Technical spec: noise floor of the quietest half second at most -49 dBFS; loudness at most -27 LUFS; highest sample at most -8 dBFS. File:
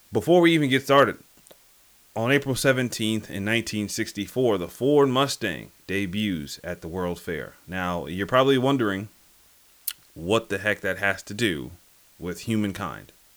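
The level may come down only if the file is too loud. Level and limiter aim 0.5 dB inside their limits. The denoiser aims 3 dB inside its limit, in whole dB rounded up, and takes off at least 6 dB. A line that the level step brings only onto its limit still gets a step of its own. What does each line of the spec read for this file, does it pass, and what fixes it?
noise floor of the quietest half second -57 dBFS: pass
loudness -24.5 LUFS: fail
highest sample -6.5 dBFS: fail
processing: trim -3 dB

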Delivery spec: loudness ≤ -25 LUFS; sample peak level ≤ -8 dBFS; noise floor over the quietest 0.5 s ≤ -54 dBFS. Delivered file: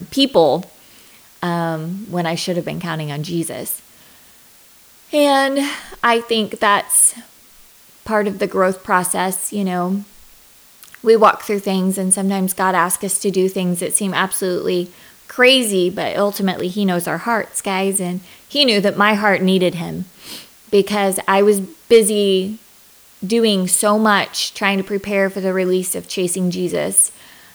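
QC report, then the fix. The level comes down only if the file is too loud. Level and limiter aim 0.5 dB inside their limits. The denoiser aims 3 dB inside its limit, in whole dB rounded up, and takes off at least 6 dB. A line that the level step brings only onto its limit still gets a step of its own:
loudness -17.0 LUFS: fail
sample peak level -1.5 dBFS: fail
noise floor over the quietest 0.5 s -47 dBFS: fail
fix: trim -8.5 dB

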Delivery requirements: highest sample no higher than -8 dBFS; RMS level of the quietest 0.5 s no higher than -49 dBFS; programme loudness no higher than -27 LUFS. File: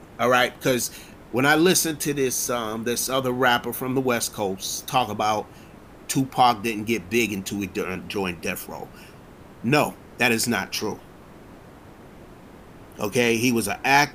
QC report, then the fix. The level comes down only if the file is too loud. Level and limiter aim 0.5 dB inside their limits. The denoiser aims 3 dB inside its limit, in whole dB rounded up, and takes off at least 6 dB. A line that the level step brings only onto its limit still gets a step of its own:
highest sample -5.5 dBFS: fail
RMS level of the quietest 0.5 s -45 dBFS: fail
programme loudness -23.0 LUFS: fail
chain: trim -4.5 dB

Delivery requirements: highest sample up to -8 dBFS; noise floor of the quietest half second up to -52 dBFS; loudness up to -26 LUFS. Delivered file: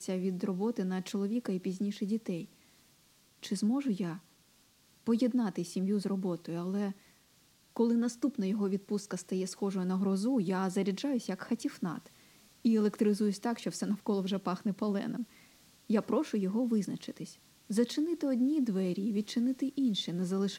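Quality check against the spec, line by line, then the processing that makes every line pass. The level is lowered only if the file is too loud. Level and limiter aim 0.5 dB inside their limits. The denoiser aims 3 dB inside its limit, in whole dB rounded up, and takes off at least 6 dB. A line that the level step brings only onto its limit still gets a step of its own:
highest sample -17.0 dBFS: pass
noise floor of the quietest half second -66 dBFS: pass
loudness -33.0 LUFS: pass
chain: none needed

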